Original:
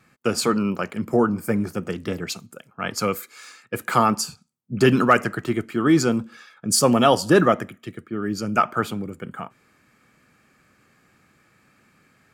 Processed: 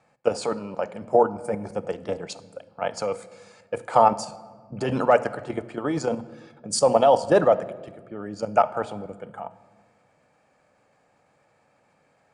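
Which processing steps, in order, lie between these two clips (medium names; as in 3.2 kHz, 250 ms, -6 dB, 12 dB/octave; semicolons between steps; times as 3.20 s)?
steep low-pass 10 kHz 96 dB/octave; high-order bell 680 Hz +14 dB 1.2 oct; hum notches 60/120/180/240 Hz; level held to a coarse grid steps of 10 dB; simulated room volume 1700 m³, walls mixed, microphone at 0.34 m; trim -4.5 dB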